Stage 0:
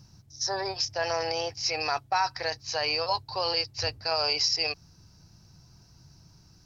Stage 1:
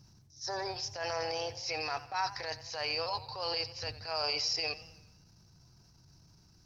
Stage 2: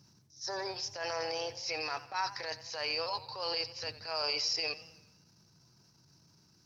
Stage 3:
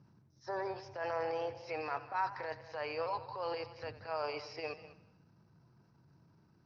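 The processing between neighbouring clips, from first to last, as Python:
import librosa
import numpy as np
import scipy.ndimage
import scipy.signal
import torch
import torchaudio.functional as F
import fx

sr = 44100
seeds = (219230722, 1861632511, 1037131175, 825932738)

y1 = fx.transient(x, sr, attack_db=-10, sustain_db=4)
y1 = fx.echo_warbled(y1, sr, ms=88, feedback_pct=52, rate_hz=2.8, cents=92, wet_db=-16.0)
y1 = F.gain(torch.from_numpy(y1), -5.5).numpy()
y2 = scipy.signal.sosfilt(scipy.signal.butter(2, 150.0, 'highpass', fs=sr, output='sos'), y1)
y2 = fx.peak_eq(y2, sr, hz=740.0, db=-5.5, octaves=0.22)
y3 = scipy.signal.sosfilt(scipy.signal.butter(2, 1600.0, 'lowpass', fs=sr, output='sos'), y2)
y3 = y3 + 10.0 ** (-16.0 / 20.0) * np.pad(y3, (int(197 * sr / 1000.0), 0))[:len(y3)]
y3 = F.gain(torch.from_numpy(y3), 1.0).numpy()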